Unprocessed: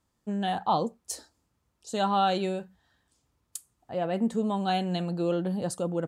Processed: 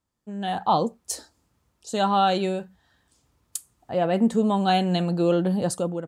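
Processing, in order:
automatic gain control gain up to 13.5 dB
level −6.5 dB

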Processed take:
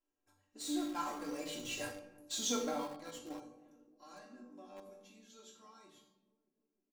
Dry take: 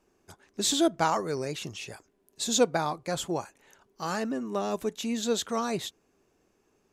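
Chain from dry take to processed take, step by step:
source passing by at 0:01.92, 20 m/s, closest 2.5 metres
parametric band 160 Hz −2.5 dB 0.77 octaves
mains-hum notches 50/100/150/200 Hz
resonators tuned to a chord G2 major, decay 0.32 s
feedback echo with a band-pass in the loop 311 ms, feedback 72%, band-pass 310 Hz, level −19 dB
rectangular room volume 3,400 cubic metres, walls furnished, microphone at 3 metres
in parallel at −11.5 dB: log-companded quantiser 4 bits
on the sum: comb filter 3.7 ms, depth 73%
level +11.5 dB

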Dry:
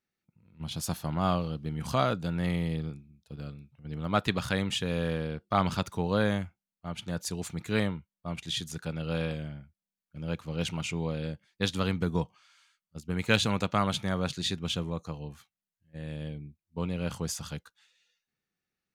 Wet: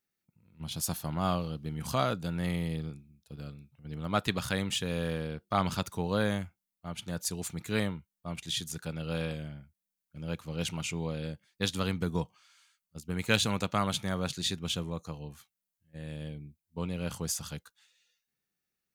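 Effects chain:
high-shelf EQ 7,200 Hz +10.5 dB
level −2.5 dB

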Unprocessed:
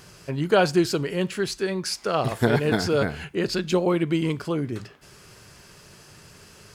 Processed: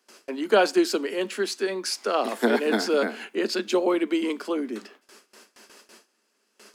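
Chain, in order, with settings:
Butterworth high-pass 210 Hz 96 dB per octave
noise gate with hold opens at −39 dBFS

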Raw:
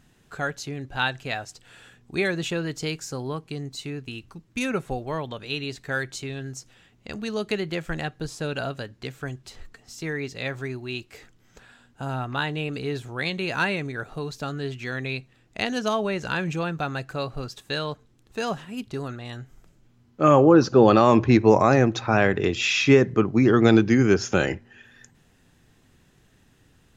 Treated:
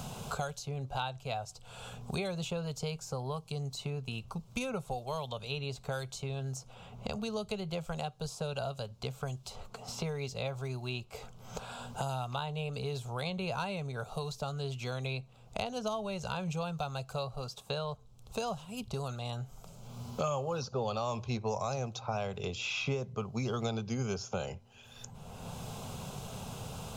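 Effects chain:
phaser with its sweep stopped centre 750 Hz, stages 4
multiband upward and downward compressor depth 100%
level −5.5 dB

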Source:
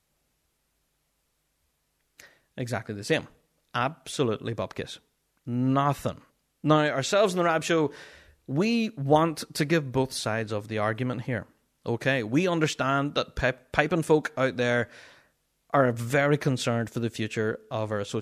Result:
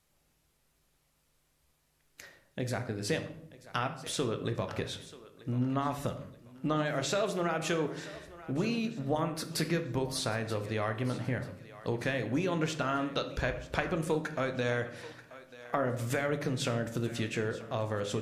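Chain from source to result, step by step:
downward compressor 3 to 1, threshold −31 dBFS, peak gain reduction 12.5 dB
feedback echo with a high-pass in the loop 935 ms, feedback 36%, level −16 dB
on a send at −7 dB: convolution reverb RT60 0.70 s, pre-delay 10 ms

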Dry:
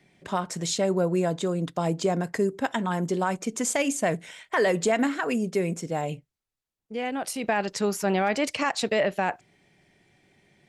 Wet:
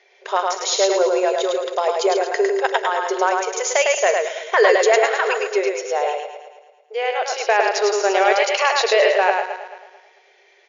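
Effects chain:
feedback delay that plays each chunk backwards 110 ms, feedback 57%, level −10 dB
linear-phase brick-wall band-pass 370–7,100 Hz
single-tap delay 104 ms −3.5 dB
level +8 dB

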